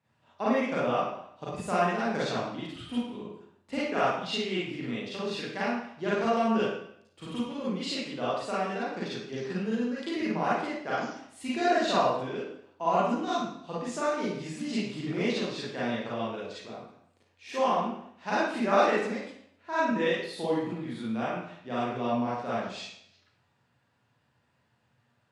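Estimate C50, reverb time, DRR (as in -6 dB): -2.0 dB, 0.70 s, -9.0 dB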